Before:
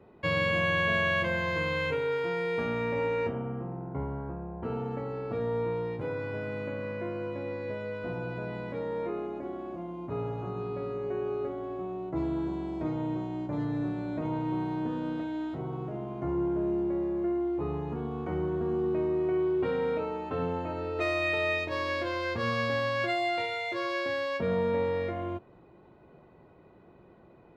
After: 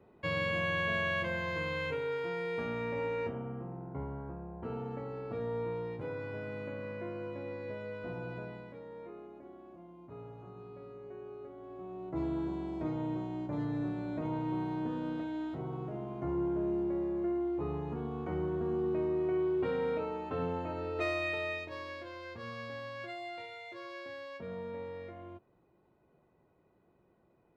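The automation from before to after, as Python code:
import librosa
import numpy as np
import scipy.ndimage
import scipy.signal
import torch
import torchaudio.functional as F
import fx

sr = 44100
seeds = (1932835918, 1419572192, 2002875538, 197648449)

y = fx.gain(x, sr, db=fx.line((8.38, -5.5), (8.8, -14.0), (11.47, -14.0), (12.22, -3.5), (21.04, -3.5), (22.04, -13.5)))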